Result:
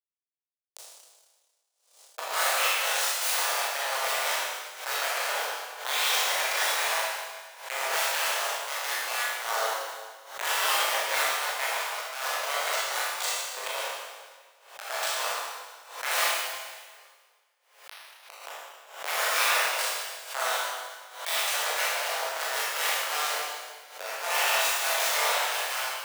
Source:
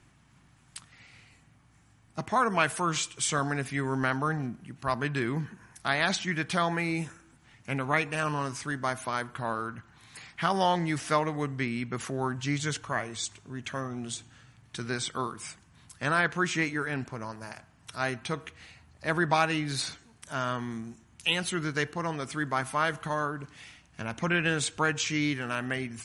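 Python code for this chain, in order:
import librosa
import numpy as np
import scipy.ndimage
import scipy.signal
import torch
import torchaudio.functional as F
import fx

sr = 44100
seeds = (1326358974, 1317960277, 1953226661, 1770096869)

y = fx.delta_hold(x, sr, step_db=-23.5)
y = fx.spec_gate(y, sr, threshold_db=-10, keep='weak')
y = scipy.signal.sosfilt(scipy.signal.butter(6, 530.0, 'highpass', fs=sr, output='sos'), y)
y = fx.gate_flip(y, sr, shuts_db=-30.0, range_db=-27, at=(16.24, 18.38))
y = fx.doubler(y, sr, ms=20.0, db=-7)
y = fx.rev_schroeder(y, sr, rt60_s=1.5, comb_ms=26, drr_db=-7.0)
y = fx.pre_swell(y, sr, db_per_s=100.0)
y = F.gain(torch.from_numpy(y), 1.0).numpy()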